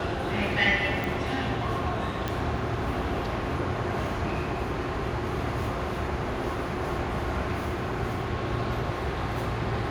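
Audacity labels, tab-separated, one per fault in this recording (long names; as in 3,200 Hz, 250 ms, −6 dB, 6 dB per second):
1.040000	1.040000	click
2.280000	2.280000	click −15 dBFS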